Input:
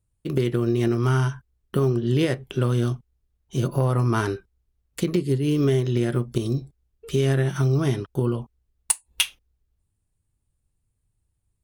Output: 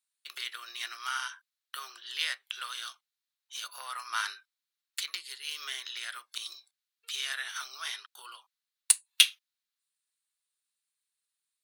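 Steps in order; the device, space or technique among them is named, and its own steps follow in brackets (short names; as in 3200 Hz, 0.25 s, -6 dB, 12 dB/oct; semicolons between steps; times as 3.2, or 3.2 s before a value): HPF 210 Hz 12 dB/oct; headphones lying on a table (HPF 1300 Hz 24 dB/oct; bell 4000 Hz +8.5 dB 0.54 oct); gain -1 dB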